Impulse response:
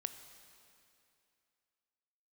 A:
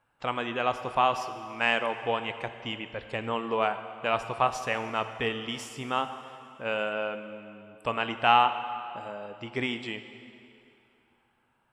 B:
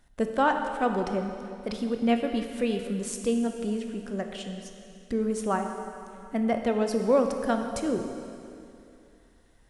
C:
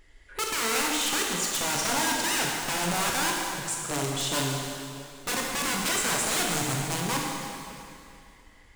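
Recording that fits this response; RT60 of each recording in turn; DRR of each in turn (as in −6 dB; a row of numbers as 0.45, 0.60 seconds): A; 2.6, 2.6, 2.6 seconds; 9.0, 4.5, −2.0 decibels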